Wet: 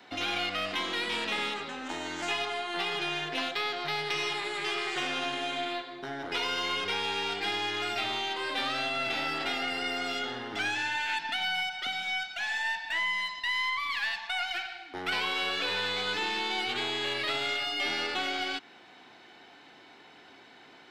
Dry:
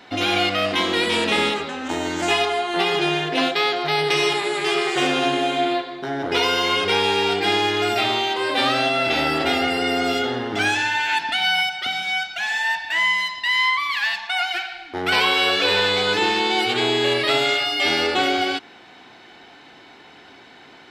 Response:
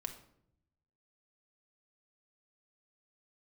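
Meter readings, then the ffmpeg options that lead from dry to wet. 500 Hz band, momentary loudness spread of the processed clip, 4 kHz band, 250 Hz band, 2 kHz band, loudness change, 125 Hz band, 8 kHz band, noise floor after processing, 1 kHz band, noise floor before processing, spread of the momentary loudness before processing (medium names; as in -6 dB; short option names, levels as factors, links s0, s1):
-15.0 dB, 4 LU, -10.0 dB, -15.0 dB, -9.5 dB, -10.5 dB, -15.0 dB, -10.5 dB, -54 dBFS, -11.5 dB, -46 dBFS, 5 LU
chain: -filter_complex "[0:a]lowshelf=f=77:g=-10.5,acrossover=split=310|790|1800|7400[s0][s1][s2][s3][s4];[s0]acompressor=threshold=0.0158:ratio=4[s5];[s1]acompressor=threshold=0.0126:ratio=4[s6];[s2]acompressor=threshold=0.0447:ratio=4[s7];[s3]acompressor=threshold=0.0631:ratio=4[s8];[s4]acompressor=threshold=0.002:ratio=4[s9];[s5][s6][s7][s8][s9]amix=inputs=5:normalize=0,aeval=exprs='0.355*(cos(1*acos(clip(val(0)/0.355,-1,1)))-cos(1*PI/2))+0.00794*(cos(8*acos(clip(val(0)/0.355,-1,1)))-cos(8*PI/2))':c=same,volume=0.422"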